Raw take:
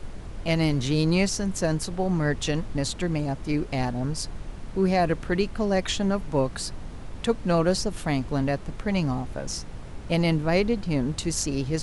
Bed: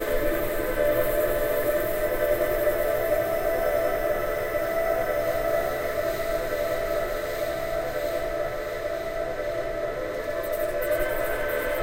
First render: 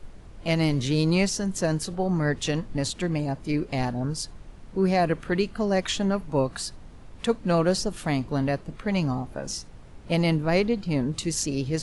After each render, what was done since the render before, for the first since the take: noise print and reduce 8 dB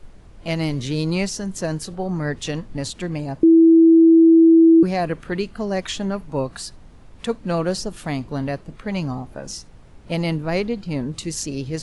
3.43–4.83 s: bleep 328 Hz -7.5 dBFS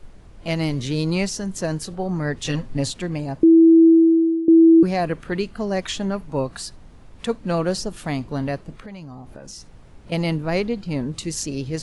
2.44–2.97 s: comb 7.5 ms, depth 78%; 3.86–4.48 s: fade out linear, to -18.5 dB; 8.78–10.12 s: compression, threshold -34 dBFS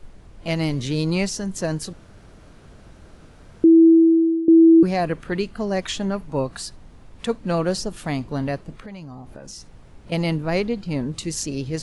1.93–3.64 s: room tone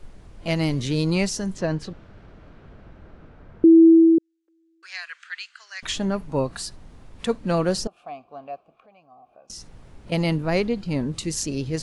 1.53–3.65 s: low-pass 4 kHz -> 1.9 kHz; 4.18–5.83 s: elliptic band-pass 1.5–7.6 kHz, stop band 80 dB; 7.87–9.50 s: vowel filter a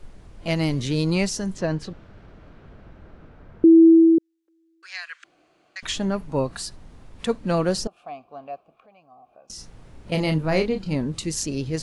5.24–5.76 s: room tone; 9.55–10.95 s: doubling 32 ms -7 dB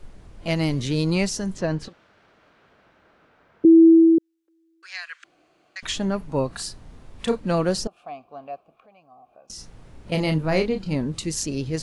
1.88–3.65 s: high-pass 1.1 kHz 6 dB/octave; 6.56–7.40 s: doubling 34 ms -6 dB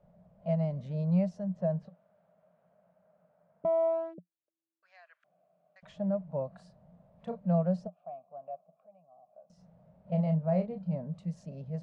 one-sided wavefolder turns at -12 dBFS; two resonant band-passes 330 Hz, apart 1.8 oct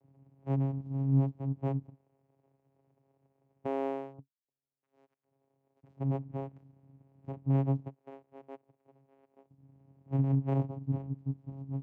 median filter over 25 samples; vocoder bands 4, saw 136 Hz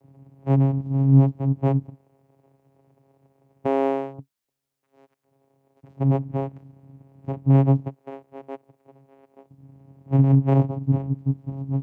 trim +11.5 dB

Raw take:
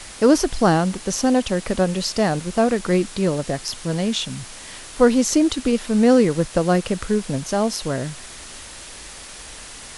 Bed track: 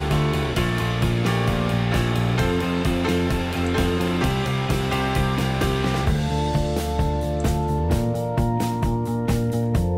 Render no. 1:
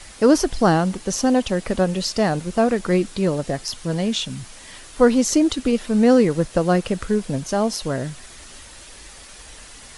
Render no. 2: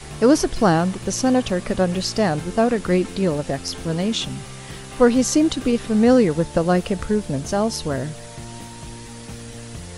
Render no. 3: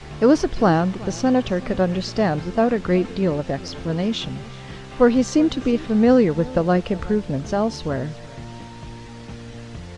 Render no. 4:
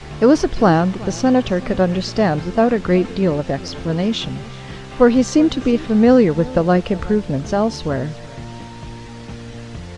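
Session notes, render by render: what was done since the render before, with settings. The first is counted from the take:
noise reduction 6 dB, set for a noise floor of -39 dBFS
add bed track -15 dB
distance through air 130 m; delay 374 ms -20.5 dB
trim +3.5 dB; peak limiter -2 dBFS, peak gain reduction 1.5 dB

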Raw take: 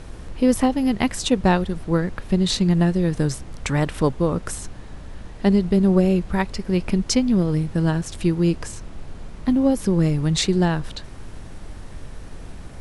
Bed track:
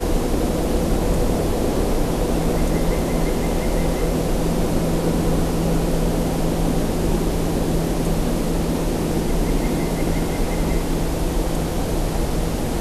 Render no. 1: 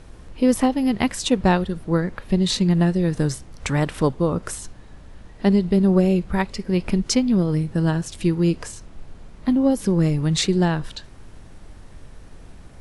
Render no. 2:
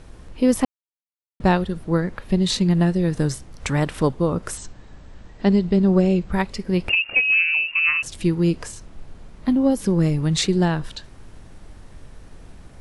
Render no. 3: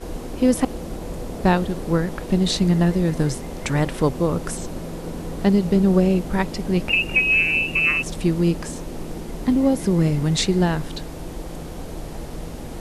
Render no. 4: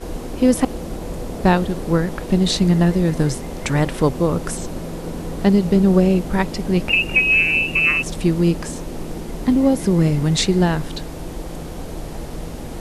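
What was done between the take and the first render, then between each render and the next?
noise print and reduce 6 dB
0.65–1.40 s: mute; 4.57–6.32 s: brick-wall FIR low-pass 8.5 kHz; 6.89–8.03 s: frequency inversion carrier 2.8 kHz
add bed track -11.5 dB
trim +2.5 dB

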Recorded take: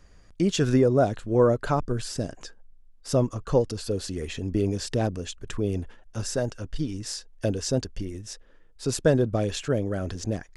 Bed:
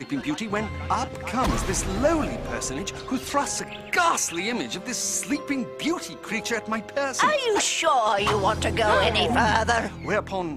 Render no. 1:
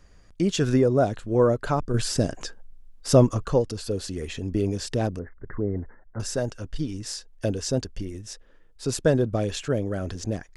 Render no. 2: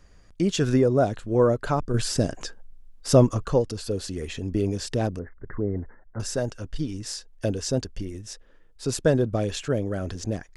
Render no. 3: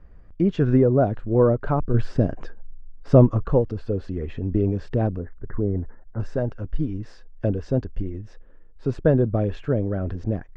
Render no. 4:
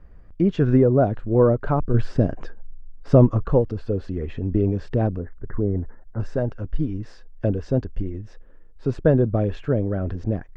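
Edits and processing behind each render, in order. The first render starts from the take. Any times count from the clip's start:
1.94–3.48 s: gain +6.5 dB; 5.19–6.20 s: Chebyshev low-pass 2.1 kHz, order 10
no audible change
low-pass 1.9 kHz 12 dB/octave; tilt EQ -1.5 dB/octave
trim +1 dB; peak limiter -2 dBFS, peak gain reduction 2 dB

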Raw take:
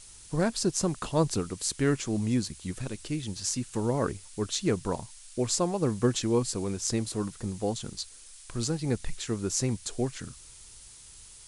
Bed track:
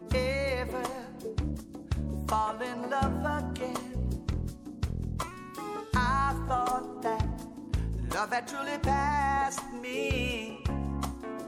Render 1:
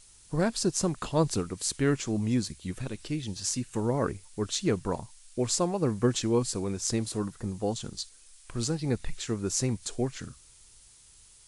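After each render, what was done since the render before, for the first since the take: noise print and reduce 6 dB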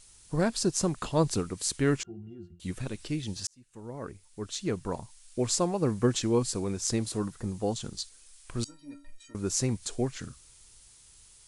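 2.03–2.60 s: pitch-class resonator F, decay 0.23 s; 3.47–5.43 s: fade in linear; 8.64–9.35 s: inharmonic resonator 280 Hz, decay 0.42 s, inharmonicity 0.03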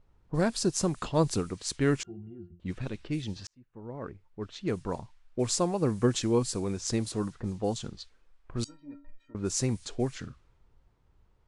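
treble shelf 9.5 kHz -4.5 dB; level-controlled noise filter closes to 840 Hz, open at -26 dBFS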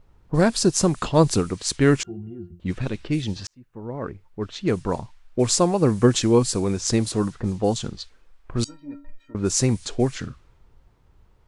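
trim +8.5 dB

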